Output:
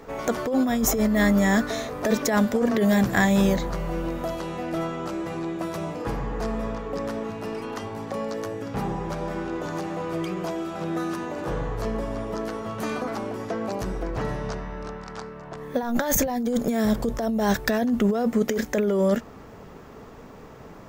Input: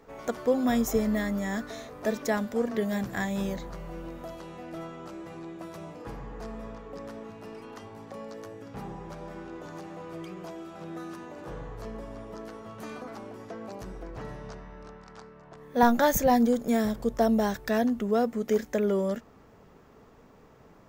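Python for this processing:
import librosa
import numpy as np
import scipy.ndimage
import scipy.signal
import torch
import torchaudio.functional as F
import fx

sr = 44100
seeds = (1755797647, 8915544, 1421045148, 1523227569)

y = fx.over_compress(x, sr, threshold_db=-29.0, ratio=-1.0)
y = F.gain(torch.from_numpy(y), 8.0).numpy()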